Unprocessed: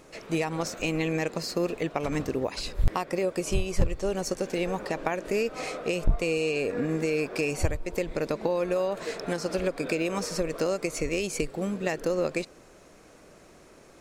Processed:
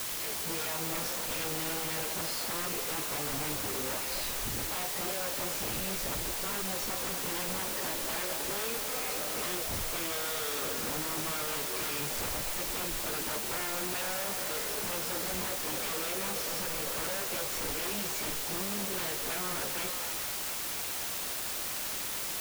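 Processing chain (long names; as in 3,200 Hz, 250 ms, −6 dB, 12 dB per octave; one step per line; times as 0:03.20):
parametric band 12,000 Hz −14.5 dB 0.84 octaves
notch filter 690 Hz, Q 12
in parallel at −2.5 dB: downward compressor 6 to 1, threshold −36 dBFS, peak gain reduction 19 dB
on the sum: time stretch by phase vocoder 1.6×
flanger 0.31 Hz, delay 7.9 ms, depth 7.4 ms, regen +59%
wave folding −34 dBFS
bit-depth reduction 6 bits, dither triangular
on a send: echo through a band-pass that steps 236 ms, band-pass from 680 Hz, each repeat 0.7 octaves, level −3.5 dB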